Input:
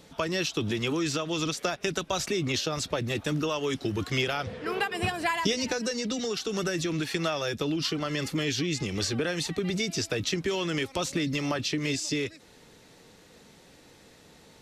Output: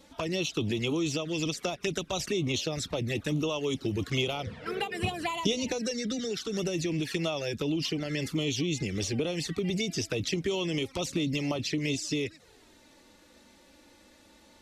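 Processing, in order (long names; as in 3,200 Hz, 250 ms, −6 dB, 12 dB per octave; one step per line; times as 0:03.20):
flanger swept by the level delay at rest 3.9 ms, full sweep at −25 dBFS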